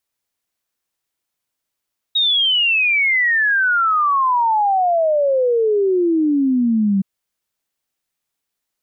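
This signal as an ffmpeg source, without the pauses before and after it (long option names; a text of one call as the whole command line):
ffmpeg -f lavfi -i "aevalsrc='0.224*clip(min(t,4.87-t)/0.01,0,1)*sin(2*PI*3800*4.87/log(190/3800)*(exp(log(190/3800)*t/4.87)-1))':duration=4.87:sample_rate=44100" out.wav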